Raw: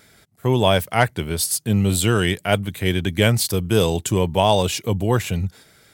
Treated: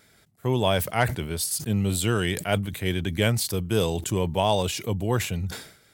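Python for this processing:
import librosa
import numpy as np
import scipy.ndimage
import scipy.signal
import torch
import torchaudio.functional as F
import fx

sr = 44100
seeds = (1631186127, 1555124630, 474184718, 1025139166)

y = fx.sustainer(x, sr, db_per_s=96.0)
y = F.gain(torch.from_numpy(y), -6.0).numpy()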